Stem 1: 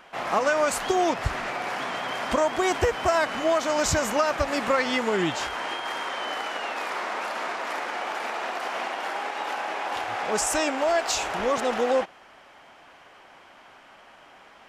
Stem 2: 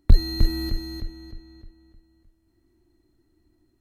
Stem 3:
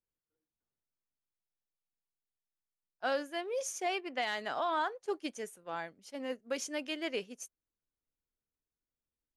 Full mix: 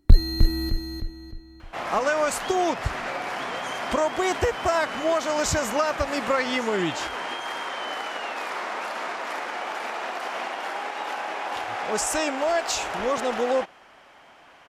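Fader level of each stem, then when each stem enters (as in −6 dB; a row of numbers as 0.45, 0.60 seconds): −0.5, +1.0, −7.5 decibels; 1.60, 0.00, 0.00 seconds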